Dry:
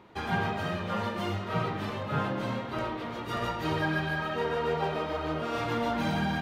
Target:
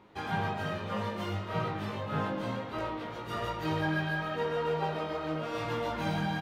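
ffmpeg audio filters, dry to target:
-filter_complex "[0:a]asplit=2[a][b];[b]adelay=19,volume=-4dB[c];[a][c]amix=inputs=2:normalize=0,volume=-4.5dB"

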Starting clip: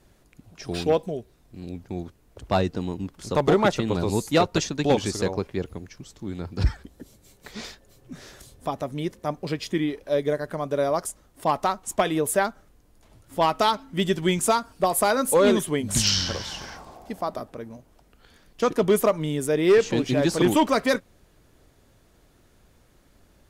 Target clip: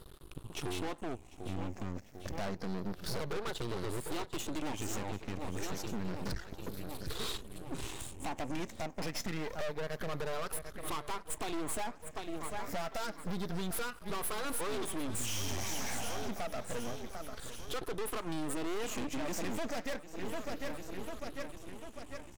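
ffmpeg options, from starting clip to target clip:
-filter_complex "[0:a]afftfilt=real='re*pow(10,15/40*sin(2*PI*(0.63*log(max(b,1)*sr/1024/100)/log(2)-(-0.27)*(pts-256)/sr)))':imag='im*pow(10,15/40*sin(2*PI*(0.63*log(max(b,1)*sr/1024/100)/log(2)-(-0.27)*(pts-256)/sr)))':win_size=1024:overlap=0.75,aeval=exprs='max(val(0),0)':c=same,asetrate=46305,aresample=44100,asplit=2[a][b];[b]aecho=0:1:747|1494|2241|2988:0.0891|0.049|0.027|0.0148[c];[a][c]amix=inputs=2:normalize=0,acompressor=threshold=-31dB:ratio=10,asoftclip=type=hard:threshold=-34.5dB,volume=5dB"

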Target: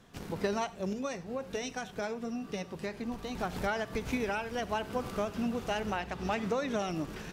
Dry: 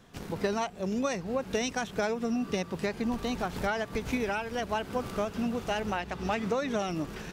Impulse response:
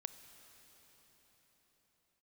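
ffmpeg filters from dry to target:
-filter_complex "[0:a]asettb=1/sr,asplit=3[a][b][c];[a]atrim=end=0.934[d];[b]atrim=start=0.93:end=3.35,asetpts=PTS-STARTPTS,afade=t=in:d=0.004:c=qsin,afade=t=out:st=2.416:d=0.004:c=qsin,flanger=delay=6.3:depth=1.9:regen=-66:speed=1.3:shape=sinusoidal[e];[c]atrim=start=3.346[f];[d][e]acrossfade=d=0.004:c1=hsin:c2=qsin[g];[g][f]acrossfade=d=0.004:c1=qsin:c2=hsin[h];[1:a]atrim=start_sample=2205,atrim=end_sample=3528,asetrate=30870,aresample=44100[i];[h][i]afir=irnorm=-1:irlink=0"

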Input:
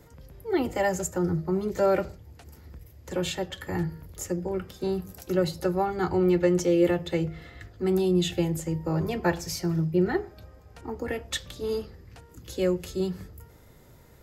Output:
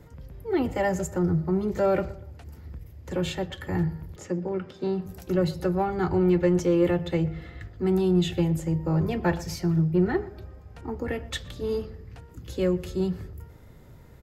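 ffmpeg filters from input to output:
-filter_complex "[0:a]bass=f=250:g=5,treble=f=4k:g=-6,asplit=2[a][b];[b]asoftclip=type=tanh:threshold=-22dB,volume=-6dB[c];[a][c]amix=inputs=2:normalize=0,asettb=1/sr,asplit=3[d][e][f];[d]atrim=end=4.164[g];[e]atrim=start=4.16:end=5.06,asetpts=PTS-STARTPTS,afade=t=in:d=0.004:c=qsin,afade=t=out:st=0.896:d=0.004:c=qsin,highpass=160,lowpass=5.7k[h];[f]atrim=start=5.056[i];[g][h]acrossfade=d=0.004:c1=hsin:c2=qsin[j];[j][i]acrossfade=d=0.004:c1=qsin:c2=hsin,asplit=2[k][l];[l]adelay=121,lowpass=f=2.2k:p=1,volume=-18.5dB,asplit=2[m][n];[n]adelay=121,lowpass=f=2.2k:p=1,volume=0.42,asplit=2[o][p];[p]adelay=121,lowpass=f=2.2k:p=1,volume=0.42[q];[k][m][o][q]amix=inputs=4:normalize=0,volume=-3dB"

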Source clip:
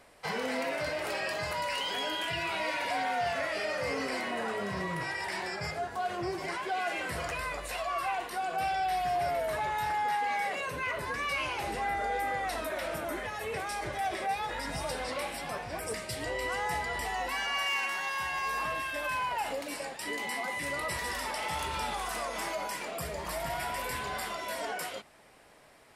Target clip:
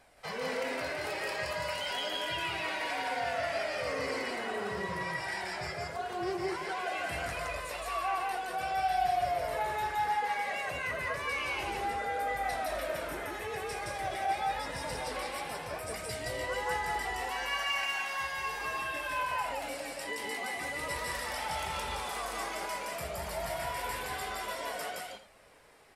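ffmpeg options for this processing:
-filter_complex "[0:a]flanger=delay=1.2:depth=1.5:regen=48:speed=0.56:shape=triangular,asplit=2[a][b];[b]aecho=0:1:169.1|250.7:0.891|0.251[c];[a][c]amix=inputs=2:normalize=0"

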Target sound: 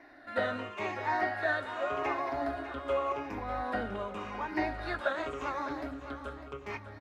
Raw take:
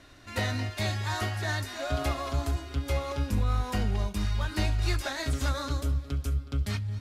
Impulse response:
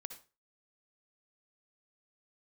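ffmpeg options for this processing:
-filter_complex "[0:a]afftfilt=real='re*pow(10,11/40*sin(2*PI*(0.75*log(max(b,1)*sr/1024/100)/log(2)-(-0.87)*(pts-256)/sr)))':imag='im*pow(10,11/40*sin(2*PI*(0.75*log(max(b,1)*sr/1024/100)/log(2)-(-0.87)*(pts-256)/sr)))':win_size=1024:overlap=0.75,acrossover=split=7100[a][b];[b]acompressor=threshold=-52dB:ratio=4:attack=1:release=60[c];[a][c]amix=inputs=2:normalize=0,acrossover=split=270 2200:gain=0.0631 1 0.0794[d][e][f];[d][e][f]amix=inputs=3:normalize=0,bandreject=f=68.58:t=h:w=4,bandreject=f=137.16:t=h:w=4,bandreject=f=205.74:t=h:w=4,bandreject=f=274.32:t=h:w=4,bandreject=f=342.9:t=h:w=4,asplit=2[g][h];[h]aecho=0:1:601|1202|1803|2404|3005:0.237|0.111|0.0524|0.0246|0.0116[i];[g][i]amix=inputs=2:normalize=0,volume=2dB"

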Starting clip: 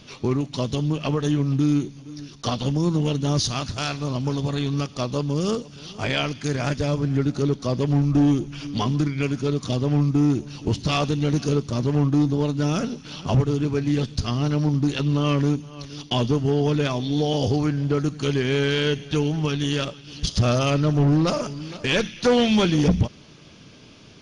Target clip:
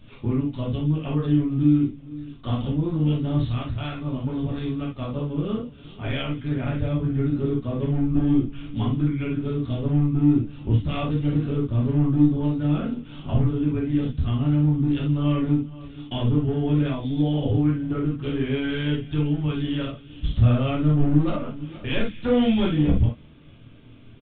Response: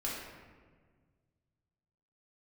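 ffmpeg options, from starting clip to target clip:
-filter_complex "[0:a]lowshelf=f=190:g=12[a];[1:a]atrim=start_sample=2205,atrim=end_sample=3528[b];[a][b]afir=irnorm=-1:irlink=0,aresample=8000,aresample=44100,volume=-8.5dB"

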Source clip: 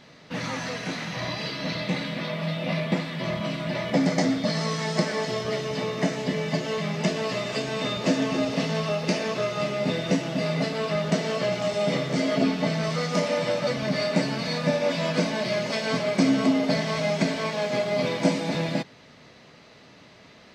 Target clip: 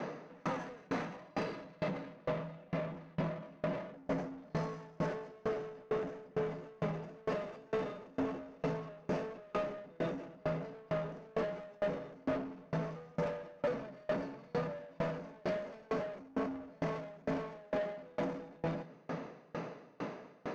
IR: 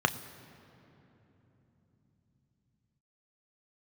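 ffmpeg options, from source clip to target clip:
-filter_complex "[0:a]equalizer=f=470:t=o:w=0.77:g=4,asplit=2[a][b];[b]acrusher=samples=38:mix=1:aa=0.000001,volume=-12dB[c];[a][c]amix=inputs=2:normalize=0,lowpass=f=1.3k:p=1,alimiter=level_in=11.5dB:limit=-24dB:level=0:latency=1:release=122,volume=-11.5dB,highpass=f=140:w=0.5412,highpass=f=140:w=1.3066,asplit=2[d][e];[1:a]atrim=start_sample=2205,highshelf=f=3.1k:g=7.5[f];[e][f]afir=irnorm=-1:irlink=0,volume=-10.5dB[g];[d][g]amix=inputs=2:normalize=0,asoftclip=type=tanh:threshold=-37.5dB,aeval=exprs='val(0)*pow(10,-31*if(lt(mod(2.2*n/s,1),2*abs(2.2)/1000),1-mod(2.2*n/s,1)/(2*abs(2.2)/1000),(mod(2.2*n/s,1)-2*abs(2.2)/1000)/(1-2*abs(2.2)/1000))/20)':c=same,volume=11dB"

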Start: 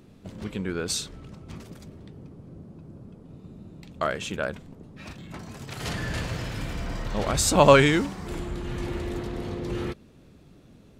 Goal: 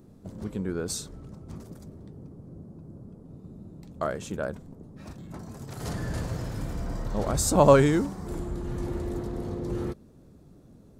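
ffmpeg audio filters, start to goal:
-af "equalizer=f=2.7k:t=o:w=1.6:g=-14"

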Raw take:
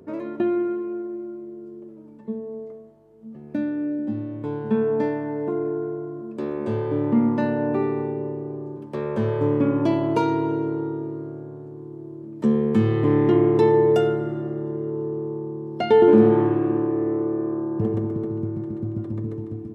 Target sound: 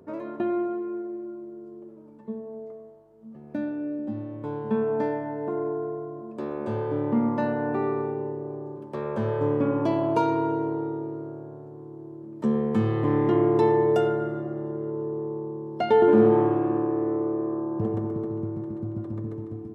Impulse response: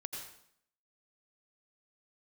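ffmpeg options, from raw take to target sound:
-filter_complex "[0:a]asplit=2[a][b];[b]asuperpass=centerf=910:order=4:qfactor=0.71[c];[1:a]atrim=start_sample=2205[d];[c][d]afir=irnorm=-1:irlink=0,volume=-1dB[e];[a][e]amix=inputs=2:normalize=0,volume=-4dB"

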